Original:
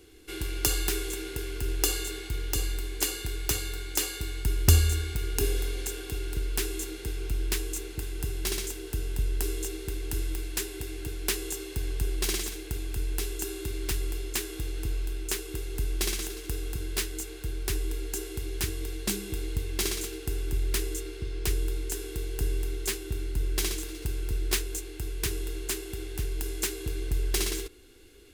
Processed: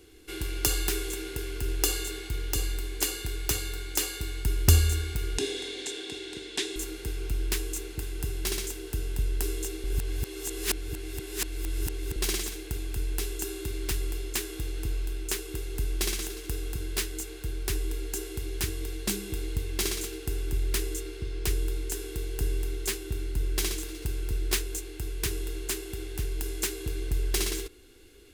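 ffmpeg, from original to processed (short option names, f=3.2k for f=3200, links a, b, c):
-filter_complex "[0:a]asettb=1/sr,asplit=3[a][b][c];[a]atrim=end=5.384[d];[b]atrim=start=5.38:end=6.76,asetpts=PTS-STARTPTS,afade=t=in:d=0.004:c=qsin,afade=t=out:st=1.376:d=0.004:c=qsin,highpass=230,equalizer=f=270:t=q:w=4:g=5,equalizer=f=1.3k:t=q:w=4:g=-8,equalizer=f=1.9k:t=q:w=4:g=4,equalizer=f=3.6k:t=q:w=4:g=10,lowpass=f=8.7k:w=0.5412,lowpass=f=8.7k:w=1.3066[e];[c]atrim=start=6.756[f];[d][e]acrossfade=d=0.004:c1=hsin:c2=qsin[g];[g][f]acrossfade=d=0.004:c1=qsin:c2=hsin,asplit=3[h][i][j];[h]atrim=end=9.842[k];[i]atrim=start=9.838:end=12.162,asetpts=PTS-STARTPTS,areverse[l];[j]atrim=start=12.158[m];[k][l]acrossfade=d=0.004:c1=hsin:c2=hsin[n];[n][m]acrossfade=d=0.004:c1=hsin:c2=hsin"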